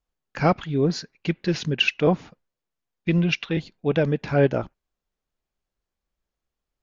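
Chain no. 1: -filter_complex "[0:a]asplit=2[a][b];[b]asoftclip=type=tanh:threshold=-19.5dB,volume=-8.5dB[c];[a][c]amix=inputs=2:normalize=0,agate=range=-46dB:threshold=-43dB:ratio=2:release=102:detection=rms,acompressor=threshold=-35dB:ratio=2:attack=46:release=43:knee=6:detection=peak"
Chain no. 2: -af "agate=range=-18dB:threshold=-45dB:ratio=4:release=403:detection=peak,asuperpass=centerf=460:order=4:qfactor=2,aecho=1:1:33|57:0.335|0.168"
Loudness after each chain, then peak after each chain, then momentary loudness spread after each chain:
-29.0, -28.5 LUFS; -13.5, -10.5 dBFS; 9, 14 LU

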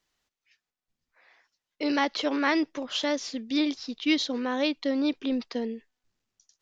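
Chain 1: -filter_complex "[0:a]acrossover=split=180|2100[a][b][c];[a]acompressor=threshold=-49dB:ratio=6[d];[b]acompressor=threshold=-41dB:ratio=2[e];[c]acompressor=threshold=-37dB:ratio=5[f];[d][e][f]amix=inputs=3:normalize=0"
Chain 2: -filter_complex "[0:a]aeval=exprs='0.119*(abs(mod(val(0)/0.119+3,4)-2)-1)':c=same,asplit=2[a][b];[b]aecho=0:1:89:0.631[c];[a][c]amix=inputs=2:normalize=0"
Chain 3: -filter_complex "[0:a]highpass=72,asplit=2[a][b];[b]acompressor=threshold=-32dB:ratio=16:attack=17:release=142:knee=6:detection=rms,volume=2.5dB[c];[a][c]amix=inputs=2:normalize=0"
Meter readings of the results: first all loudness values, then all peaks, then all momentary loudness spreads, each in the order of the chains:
-35.5, -27.0, -24.5 LUFS; -20.0, -14.5, -8.5 dBFS; 5, 6, 6 LU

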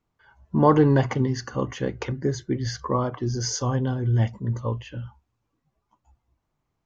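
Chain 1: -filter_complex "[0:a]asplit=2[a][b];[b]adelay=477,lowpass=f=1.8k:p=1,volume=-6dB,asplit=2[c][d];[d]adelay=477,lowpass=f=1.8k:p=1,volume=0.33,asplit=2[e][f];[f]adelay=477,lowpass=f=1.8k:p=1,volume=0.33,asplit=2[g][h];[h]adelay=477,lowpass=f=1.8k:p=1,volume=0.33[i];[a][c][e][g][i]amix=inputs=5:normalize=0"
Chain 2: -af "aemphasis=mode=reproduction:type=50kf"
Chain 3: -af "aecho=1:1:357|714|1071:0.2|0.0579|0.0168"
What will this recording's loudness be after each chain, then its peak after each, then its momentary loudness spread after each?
-23.5, -24.5, -24.5 LUFS; -4.5, -4.5, -4.5 dBFS; 15, 12, 11 LU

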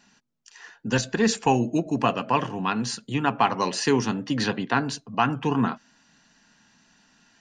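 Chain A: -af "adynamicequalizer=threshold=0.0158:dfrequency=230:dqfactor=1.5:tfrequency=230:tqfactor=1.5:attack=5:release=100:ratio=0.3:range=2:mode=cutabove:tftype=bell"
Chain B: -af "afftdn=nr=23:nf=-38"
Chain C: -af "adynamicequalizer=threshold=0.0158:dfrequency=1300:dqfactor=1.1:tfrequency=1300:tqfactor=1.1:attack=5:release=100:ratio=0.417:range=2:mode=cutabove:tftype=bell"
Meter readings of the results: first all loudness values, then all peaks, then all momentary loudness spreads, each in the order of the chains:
-25.5, -25.0, -25.0 LUFS; -6.0, -6.5, -6.5 dBFS; 6, 5, 6 LU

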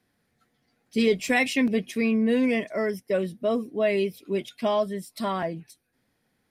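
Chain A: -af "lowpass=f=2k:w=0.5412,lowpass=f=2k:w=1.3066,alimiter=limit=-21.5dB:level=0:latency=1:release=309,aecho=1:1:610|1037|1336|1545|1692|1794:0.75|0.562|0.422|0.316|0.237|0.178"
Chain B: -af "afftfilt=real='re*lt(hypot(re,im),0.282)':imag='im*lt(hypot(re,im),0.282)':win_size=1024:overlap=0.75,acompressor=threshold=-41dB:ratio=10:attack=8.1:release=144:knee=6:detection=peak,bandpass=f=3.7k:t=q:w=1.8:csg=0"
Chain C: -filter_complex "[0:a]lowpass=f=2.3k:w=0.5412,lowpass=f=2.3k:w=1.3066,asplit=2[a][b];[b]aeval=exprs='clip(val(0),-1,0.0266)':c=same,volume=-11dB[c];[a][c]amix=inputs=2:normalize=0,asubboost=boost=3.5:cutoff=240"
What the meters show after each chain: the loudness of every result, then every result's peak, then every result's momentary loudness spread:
-28.5, -51.0, -23.5 LUFS; -14.0, -33.5, -10.5 dBFS; 6, 12, 9 LU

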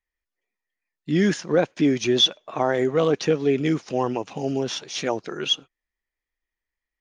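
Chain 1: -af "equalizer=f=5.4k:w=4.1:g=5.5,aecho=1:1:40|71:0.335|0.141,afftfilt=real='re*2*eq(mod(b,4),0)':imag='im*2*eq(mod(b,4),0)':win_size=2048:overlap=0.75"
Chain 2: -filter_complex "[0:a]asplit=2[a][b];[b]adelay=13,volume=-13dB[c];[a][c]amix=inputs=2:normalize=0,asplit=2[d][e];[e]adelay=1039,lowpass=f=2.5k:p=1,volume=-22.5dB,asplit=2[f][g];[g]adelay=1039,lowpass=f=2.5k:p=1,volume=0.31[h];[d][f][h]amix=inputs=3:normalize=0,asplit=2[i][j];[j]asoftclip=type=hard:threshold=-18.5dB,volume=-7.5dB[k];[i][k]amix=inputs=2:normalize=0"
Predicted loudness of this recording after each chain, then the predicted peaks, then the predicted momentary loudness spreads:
-25.0, -20.5 LUFS; -7.5, -6.5 dBFS; 9, 8 LU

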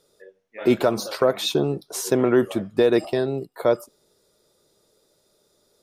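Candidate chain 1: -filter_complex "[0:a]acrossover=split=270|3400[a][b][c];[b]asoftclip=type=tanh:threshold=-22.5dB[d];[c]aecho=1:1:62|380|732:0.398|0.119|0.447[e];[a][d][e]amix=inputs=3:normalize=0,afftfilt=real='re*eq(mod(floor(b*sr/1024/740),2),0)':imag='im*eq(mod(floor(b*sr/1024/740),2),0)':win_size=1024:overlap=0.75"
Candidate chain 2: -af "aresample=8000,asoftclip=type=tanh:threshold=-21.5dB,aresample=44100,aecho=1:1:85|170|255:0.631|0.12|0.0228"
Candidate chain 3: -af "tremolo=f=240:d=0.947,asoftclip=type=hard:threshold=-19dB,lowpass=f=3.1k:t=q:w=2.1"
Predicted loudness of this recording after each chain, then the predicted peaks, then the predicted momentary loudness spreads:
-26.5, -27.0, -28.5 LUFS; -11.0, -16.5, -14.0 dBFS; 7, 7, 7 LU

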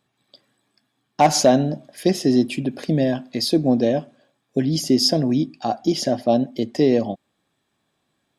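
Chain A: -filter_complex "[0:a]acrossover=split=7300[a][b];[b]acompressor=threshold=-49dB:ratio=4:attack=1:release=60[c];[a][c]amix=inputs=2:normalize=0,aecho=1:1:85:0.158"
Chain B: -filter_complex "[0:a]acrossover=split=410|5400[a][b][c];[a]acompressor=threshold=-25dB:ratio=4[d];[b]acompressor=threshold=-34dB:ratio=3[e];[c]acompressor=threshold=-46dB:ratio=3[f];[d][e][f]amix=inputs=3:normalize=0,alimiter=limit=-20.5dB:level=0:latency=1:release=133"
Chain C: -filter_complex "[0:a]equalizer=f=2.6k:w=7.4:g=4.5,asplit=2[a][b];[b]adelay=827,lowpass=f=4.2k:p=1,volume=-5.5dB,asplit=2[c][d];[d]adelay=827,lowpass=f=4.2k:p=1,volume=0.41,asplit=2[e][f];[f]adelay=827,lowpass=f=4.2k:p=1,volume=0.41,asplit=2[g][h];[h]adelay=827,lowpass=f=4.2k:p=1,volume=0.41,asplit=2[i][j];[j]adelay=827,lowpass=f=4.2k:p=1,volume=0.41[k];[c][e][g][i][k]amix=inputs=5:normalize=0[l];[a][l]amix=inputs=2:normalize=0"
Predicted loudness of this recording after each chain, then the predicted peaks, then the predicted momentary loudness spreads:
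-20.5, -31.5, -20.0 LUFS; -4.0, -20.5, -2.0 dBFS; 8, 6, 9 LU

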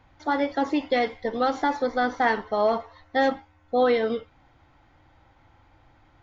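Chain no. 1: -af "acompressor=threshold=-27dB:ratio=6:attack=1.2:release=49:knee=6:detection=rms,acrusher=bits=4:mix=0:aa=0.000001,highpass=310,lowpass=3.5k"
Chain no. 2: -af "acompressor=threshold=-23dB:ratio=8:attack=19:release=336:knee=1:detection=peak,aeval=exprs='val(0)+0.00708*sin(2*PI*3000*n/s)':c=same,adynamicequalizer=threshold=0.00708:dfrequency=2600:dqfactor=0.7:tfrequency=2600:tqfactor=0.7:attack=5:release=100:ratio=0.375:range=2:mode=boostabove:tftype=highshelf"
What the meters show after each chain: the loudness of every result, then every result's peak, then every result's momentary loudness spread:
-33.0, -28.5 LUFS; -19.5, -13.0 dBFS; 6, 16 LU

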